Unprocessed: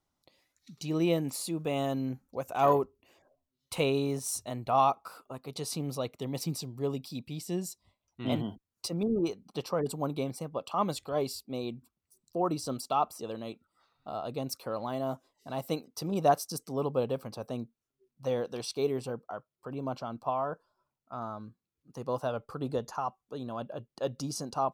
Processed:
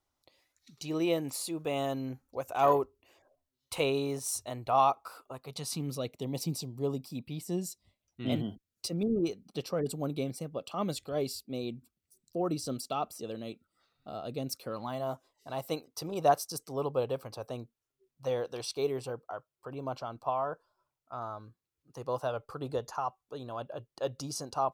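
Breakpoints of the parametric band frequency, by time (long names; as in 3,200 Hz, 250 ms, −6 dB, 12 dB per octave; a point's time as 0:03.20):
parametric band −11 dB 0.7 octaves
0:05.32 190 Hz
0:06.22 1,500 Hz
0:06.80 1,500 Hz
0:07.35 8,700 Hz
0:07.64 970 Hz
0:14.66 970 Hz
0:15.10 210 Hz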